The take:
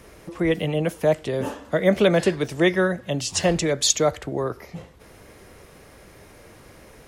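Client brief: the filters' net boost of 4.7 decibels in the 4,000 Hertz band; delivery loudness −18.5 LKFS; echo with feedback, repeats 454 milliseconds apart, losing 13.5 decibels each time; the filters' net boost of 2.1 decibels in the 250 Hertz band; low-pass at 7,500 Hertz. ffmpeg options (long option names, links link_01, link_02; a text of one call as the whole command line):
ffmpeg -i in.wav -af "lowpass=7500,equalizer=frequency=250:width_type=o:gain=3.5,equalizer=frequency=4000:width_type=o:gain=6,aecho=1:1:454|908:0.211|0.0444,volume=2dB" out.wav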